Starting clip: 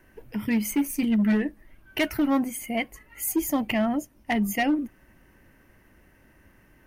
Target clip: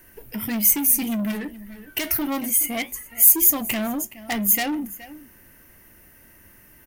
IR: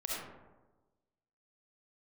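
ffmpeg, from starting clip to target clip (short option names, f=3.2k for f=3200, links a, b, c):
-filter_complex "[0:a]flanger=delay=9.3:depth=4.1:regen=-70:speed=1.7:shape=sinusoidal,asplit=2[a][b];[b]aecho=0:1:420:0.0891[c];[a][c]amix=inputs=2:normalize=0,asoftclip=type=tanh:threshold=-28.5dB,asettb=1/sr,asplit=3[d][e][f];[d]atrim=end=1.314[g];[e]atrim=start=1.31:end=2.1,asetpts=PTS-STARTPTS,afade=t=in:d=0.004:c=qsin,afade=t=out:st=0.786:d=0.004:c=qsin,acompressor=threshold=-34dB:ratio=6[h];[f]atrim=start=2.096[i];[g][h]acrossfade=d=0.004:c1=hsin:c2=qsin[j];[j][i]acrossfade=d=0.004:c1=qsin:c2=hsin,aemphasis=mode=production:type=75fm,volume=7dB"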